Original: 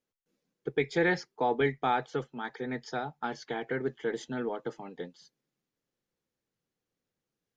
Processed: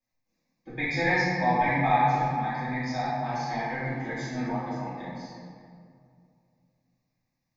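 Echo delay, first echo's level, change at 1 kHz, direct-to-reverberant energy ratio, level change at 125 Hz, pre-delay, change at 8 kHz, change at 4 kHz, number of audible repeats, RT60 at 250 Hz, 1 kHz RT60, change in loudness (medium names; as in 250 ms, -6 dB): no echo, no echo, +8.5 dB, -13.5 dB, +9.5 dB, 3 ms, no reading, +3.0 dB, no echo, 2.6 s, 2.1 s, +5.0 dB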